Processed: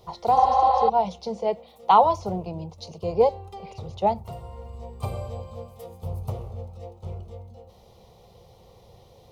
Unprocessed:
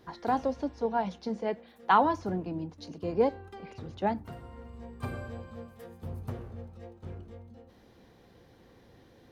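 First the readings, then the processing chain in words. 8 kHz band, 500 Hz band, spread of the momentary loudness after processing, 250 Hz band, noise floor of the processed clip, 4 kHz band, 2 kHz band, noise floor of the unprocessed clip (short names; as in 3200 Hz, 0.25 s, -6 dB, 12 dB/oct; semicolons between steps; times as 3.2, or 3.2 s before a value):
n/a, +7.0 dB, 22 LU, -2.0 dB, -53 dBFS, +6.5 dB, -6.5 dB, -59 dBFS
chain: spectral repair 0.39–0.86, 480–4700 Hz before; fixed phaser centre 680 Hz, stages 4; gain +9 dB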